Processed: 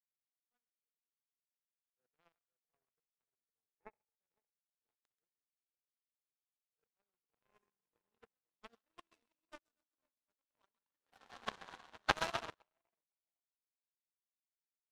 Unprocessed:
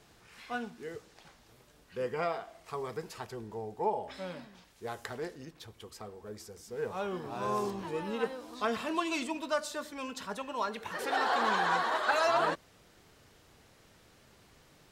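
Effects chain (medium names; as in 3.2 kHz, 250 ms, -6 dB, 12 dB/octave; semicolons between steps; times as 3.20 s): two-band feedback delay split 860 Hz, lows 506 ms, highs 133 ms, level -4 dB; power-law waveshaper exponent 3; upward expansion 2.5:1, over -55 dBFS; trim +5.5 dB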